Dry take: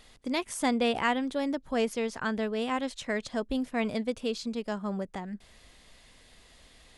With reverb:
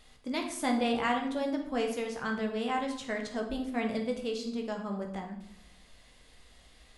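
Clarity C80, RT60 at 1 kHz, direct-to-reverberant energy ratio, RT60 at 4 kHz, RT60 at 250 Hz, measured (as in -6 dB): 10.0 dB, 0.70 s, 1.5 dB, 0.55 s, 1.0 s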